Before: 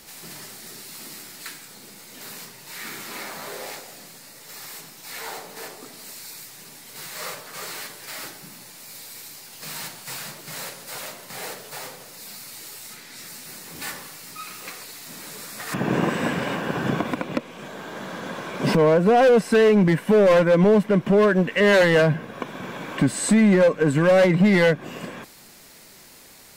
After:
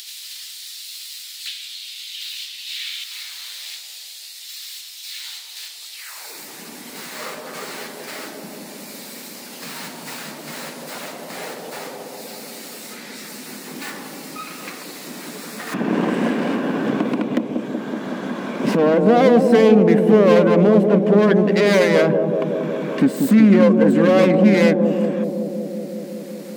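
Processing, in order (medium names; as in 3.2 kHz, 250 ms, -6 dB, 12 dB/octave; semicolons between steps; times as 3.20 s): self-modulated delay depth 0.12 ms; tone controls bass -2 dB, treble -3 dB; high-pass sweep 3.5 kHz -> 230 Hz, 5.92–6.43 s; 1.47–3.04 s: peaking EQ 3 kHz +10 dB 1.2 oct; bucket-brigade echo 187 ms, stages 1024, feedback 75%, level -4.5 dB; in parallel at -2 dB: upward compressor, threshold -18 dBFS; on the sum: trim -5.5 dB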